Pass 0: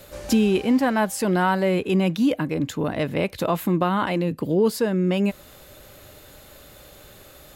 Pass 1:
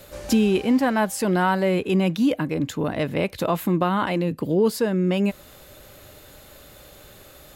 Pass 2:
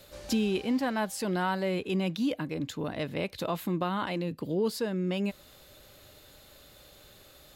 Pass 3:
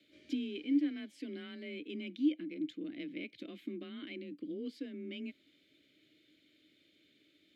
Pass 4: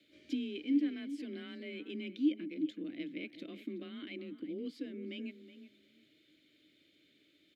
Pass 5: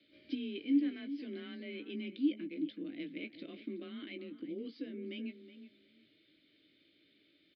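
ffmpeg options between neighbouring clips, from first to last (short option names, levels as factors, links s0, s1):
-af anull
-af "equalizer=f=4100:t=o:w=0.99:g=6,volume=0.355"
-filter_complex "[0:a]asplit=3[s0][s1][s2];[s0]bandpass=f=270:t=q:w=8,volume=1[s3];[s1]bandpass=f=2290:t=q:w=8,volume=0.501[s4];[s2]bandpass=f=3010:t=q:w=8,volume=0.355[s5];[s3][s4][s5]amix=inputs=3:normalize=0,afreqshift=27,volume=1.19"
-filter_complex "[0:a]asplit=2[s0][s1];[s1]adelay=372,lowpass=f=2300:p=1,volume=0.251,asplit=2[s2][s3];[s3]adelay=372,lowpass=f=2300:p=1,volume=0.18[s4];[s0][s2][s4]amix=inputs=3:normalize=0"
-filter_complex "[0:a]asplit=2[s0][s1];[s1]adelay=18,volume=0.355[s2];[s0][s2]amix=inputs=2:normalize=0,aresample=11025,aresample=44100,volume=0.891"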